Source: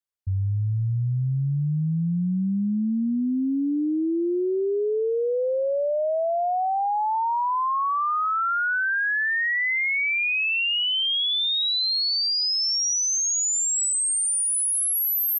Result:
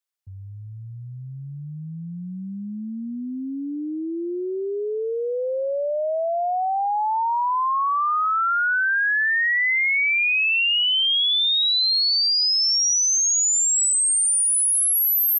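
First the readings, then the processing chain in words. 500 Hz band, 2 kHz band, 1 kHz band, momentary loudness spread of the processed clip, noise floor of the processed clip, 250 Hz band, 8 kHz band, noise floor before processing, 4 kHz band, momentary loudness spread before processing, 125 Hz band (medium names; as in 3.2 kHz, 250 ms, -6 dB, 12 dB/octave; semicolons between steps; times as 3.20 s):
-1.0 dB, +3.5 dB, +2.0 dB, 18 LU, -37 dBFS, -6.0 dB, +4.0 dB, -24 dBFS, +4.0 dB, 5 LU, under -10 dB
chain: high-pass 760 Hz 6 dB/octave; trim +4 dB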